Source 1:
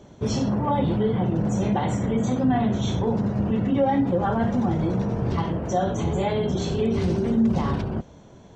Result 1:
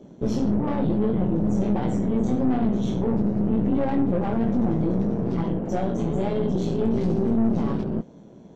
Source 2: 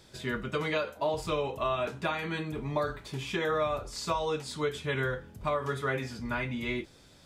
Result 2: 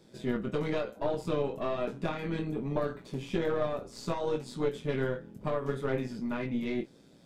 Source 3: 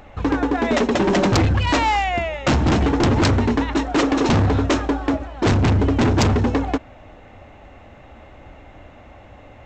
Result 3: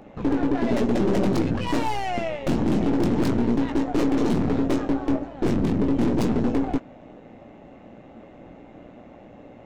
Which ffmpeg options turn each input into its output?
-filter_complex "[0:a]lowshelf=f=120:t=q:w=1.5:g=-13.5,aeval=exprs='(tanh(14.1*val(0)+0.6)-tanh(0.6))/14.1':c=same,acrossover=split=630[s0][s1];[s0]acontrast=81[s2];[s1]flanger=delay=18:depth=3.4:speed=1.1[s3];[s2][s3]amix=inputs=2:normalize=0,tremolo=f=120:d=0.462"

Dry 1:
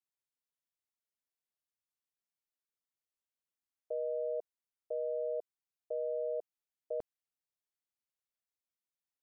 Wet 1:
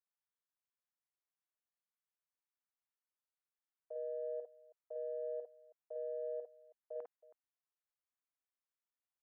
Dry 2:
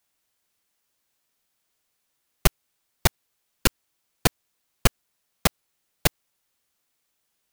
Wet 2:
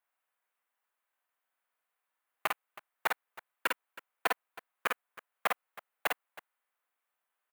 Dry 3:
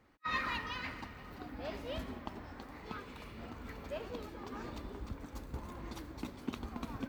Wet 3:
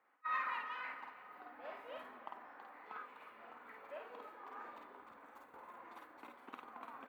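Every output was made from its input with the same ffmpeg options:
-filter_complex "[0:a]equalizer=f=5300:w=1.1:g=-12.5,asplit=2[s0][s1];[s1]adynamicsmooth=sensitivity=1.5:basefreq=2800,volume=0.891[s2];[s0][s2]amix=inputs=2:normalize=0,asoftclip=type=hard:threshold=0.501,highpass=1100,highshelf=f=2300:g=-12,aecho=1:1:50|54|321:0.631|0.398|0.126,volume=0.841"

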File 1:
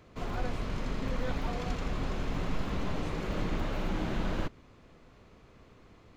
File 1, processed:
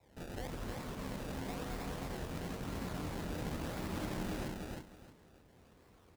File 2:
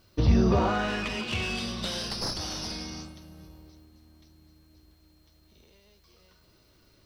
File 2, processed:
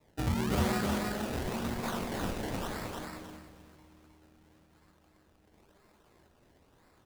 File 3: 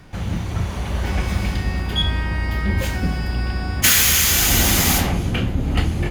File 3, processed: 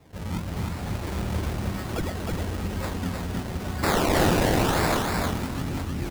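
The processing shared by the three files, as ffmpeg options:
-filter_complex "[0:a]highpass=47,adynamicequalizer=threshold=0.0158:dfrequency=260:dqfactor=1.4:tfrequency=260:tqfactor=1.4:attack=5:release=100:ratio=0.375:range=2:mode=boostabove:tftype=bell,alimiter=limit=0.237:level=0:latency=1:release=322,flanger=delay=22.5:depth=4:speed=0.35,crystalizer=i=2:c=0,acrusher=samples=28:mix=1:aa=0.000001:lfo=1:lforange=28:lforate=0.98,asplit=2[s0][s1];[s1]aecho=0:1:312|624|936:0.708|0.156|0.0343[s2];[s0][s2]amix=inputs=2:normalize=0,volume=0.562"

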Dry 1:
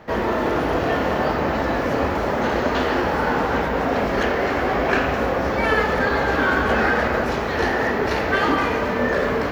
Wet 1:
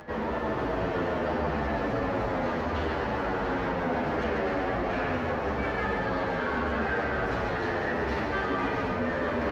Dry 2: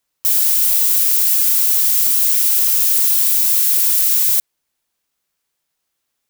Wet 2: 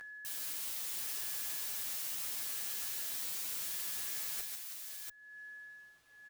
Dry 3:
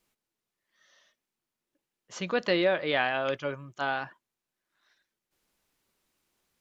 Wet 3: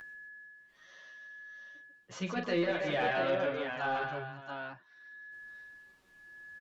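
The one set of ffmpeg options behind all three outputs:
-filter_complex "[0:a]areverse,acompressor=threshold=0.0708:ratio=10,areverse,equalizer=f=110:w=0.96:g=3,aecho=1:1:41|143|325|557|687:0.355|0.531|0.282|0.15|0.501,asoftclip=type=tanh:threshold=0.133,aeval=exprs='val(0)+0.00178*sin(2*PI*1700*n/s)':c=same,lowpass=f=3300:p=1,acompressor=mode=upward:threshold=0.01:ratio=2.5,asplit=2[s0][s1];[s1]adelay=9.5,afreqshift=-0.76[s2];[s0][s2]amix=inputs=2:normalize=1"

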